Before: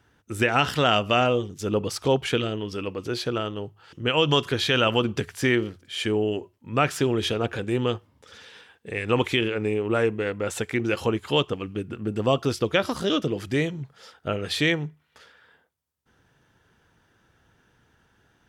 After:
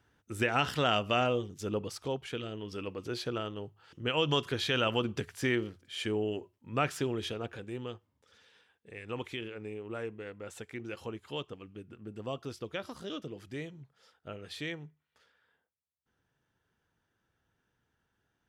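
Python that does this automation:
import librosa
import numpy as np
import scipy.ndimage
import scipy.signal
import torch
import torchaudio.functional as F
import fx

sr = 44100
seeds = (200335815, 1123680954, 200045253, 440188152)

y = fx.gain(x, sr, db=fx.line((1.62, -7.5), (2.26, -15.0), (2.77, -8.0), (6.86, -8.0), (7.92, -16.0)))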